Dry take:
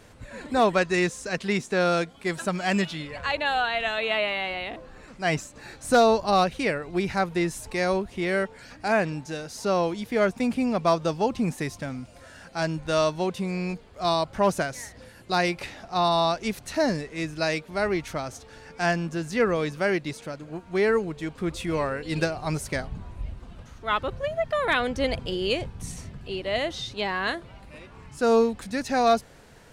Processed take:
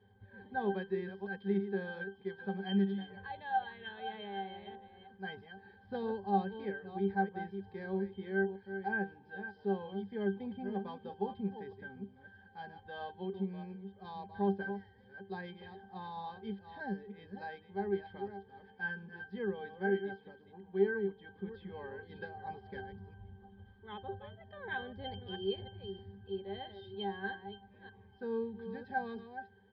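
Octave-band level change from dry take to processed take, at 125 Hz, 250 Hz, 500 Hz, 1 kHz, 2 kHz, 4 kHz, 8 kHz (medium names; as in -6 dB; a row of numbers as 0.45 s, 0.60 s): -12.0 dB, -10.5 dB, -13.5 dB, -13.5 dB, -13.0 dB, -18.0 dB, under -40 dB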